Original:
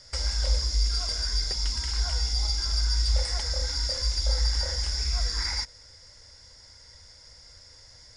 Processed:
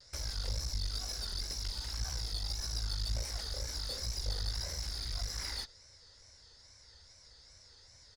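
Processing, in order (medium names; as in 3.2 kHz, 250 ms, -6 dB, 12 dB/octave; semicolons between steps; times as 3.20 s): one-sided clip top -34 dBFS, bottom -16.5 dBFS; wow and flutter 130 cents; harmony voices -4 st -10 dB; trim -8 dB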